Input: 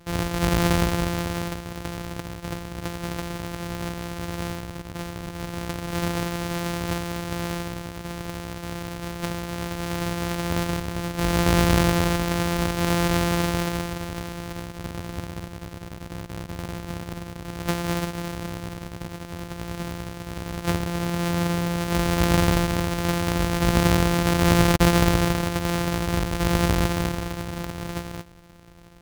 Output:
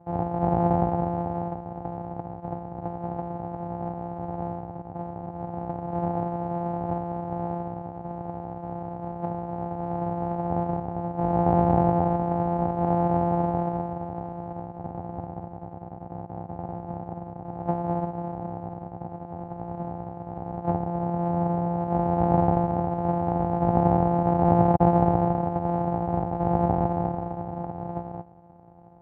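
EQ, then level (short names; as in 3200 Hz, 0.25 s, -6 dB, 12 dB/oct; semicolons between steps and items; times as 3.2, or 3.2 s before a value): HPF 130 Hz 12 dB/oct; synth low-pass 780 Hz, resonance Q 8.9; low shelf 220 Hz +11 dB; -7.5 dB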